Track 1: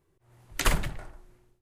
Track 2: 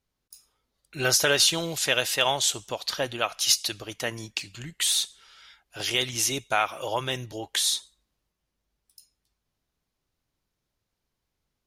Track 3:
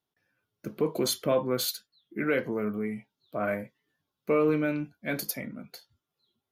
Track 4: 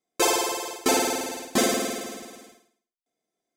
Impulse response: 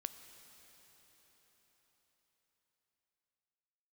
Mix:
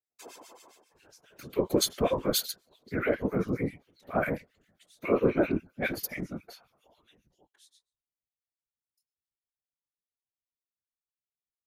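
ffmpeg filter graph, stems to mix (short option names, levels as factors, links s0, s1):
-filter_complex "[1:a]volume=0.15[s0];[2:a]adelay=750,volume=1.26,asplit=2[s1][s2];[s2]volume=0.1[s3];[3:a]volume=0.398,asplit=3[s4][s5][s6];[s4]atrim=end=0.82,asetpts=PTS-STARTPTS,afade=t=out:st=0.816:d=0.004:c=hsin[s7];[s5]atrim=start=0.82:end=1.71,asetpts=PTS-STARTPTS,volume=0[s8];[s6]atrim=start=1.71,asetpts=PTS-STARTPTS,afade=t=in:d=0.004:c=hsin[s9];[s7][s8][s9]concat=n=3:v=0:a=1,asplit=2[s10][s11];[s11]volume=0.355[s12];[s0][s10]amix=inputs=2:normalize=0,flanger=delay=19:depth=7.7:speed=2.4,acompressor=threshold=0.00316:ratio=3,volume=1[s13];[s1]dynaudnorm=f=160:g=9:m=3.76,alimiter=limit=0.473:level=0:latency=1:release=134,volume=1[s14];[4:a]atrim=start_sample=2205[s15];[s3][s12]amix=inputs=2:normalize=0[s16];[s16][s15]afir=irnorm=-1:irlink=0[s17];[s13][s14][s17]amix=inputs=3:normalize=0,acrossover=split=1400[s18][s19];[s18]aeval=exprs='val(0)*(1-1/2+1/2*cos(2*PI*7.4*n/s))':c=same[s20];[s19]aeval=exprs='val(0)*(1-1/2-1/2*cos(2*PI*7.4*n/s))':c=same[s21];[s20][s21]amix=inputs=2:normalize=0,afftfilt=real='hypot(re,im)*cos(2*PI*random(0))':imag='hypot(re,im)*sin(2*PI*random(1))':win_size=512:overlap=0.75"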